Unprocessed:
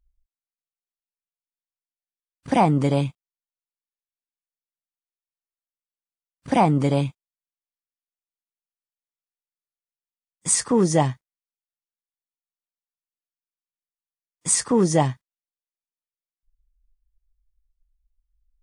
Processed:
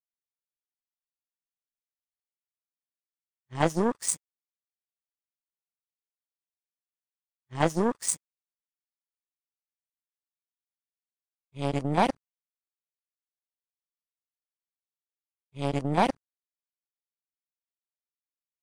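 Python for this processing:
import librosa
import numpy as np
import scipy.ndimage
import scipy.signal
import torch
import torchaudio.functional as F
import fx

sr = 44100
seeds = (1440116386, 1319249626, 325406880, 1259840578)

y = x[::-1].copy()
y = fx.power_curve(y, sr, exponent=2.0)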